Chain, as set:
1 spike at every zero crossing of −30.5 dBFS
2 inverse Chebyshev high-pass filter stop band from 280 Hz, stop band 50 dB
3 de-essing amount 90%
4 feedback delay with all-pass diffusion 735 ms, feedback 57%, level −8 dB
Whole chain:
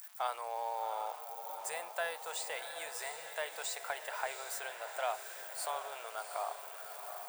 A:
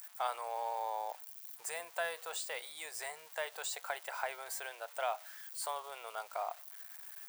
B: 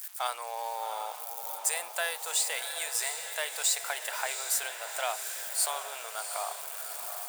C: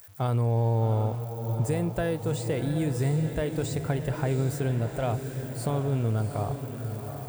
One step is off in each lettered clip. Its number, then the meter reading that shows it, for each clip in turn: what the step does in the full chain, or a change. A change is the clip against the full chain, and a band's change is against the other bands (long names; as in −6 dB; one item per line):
4, echo-to-direct ratio −6.5 dB to none audible
3, change in momentary loudness spread +3 LU
2, 500 Hz band +12.0 dB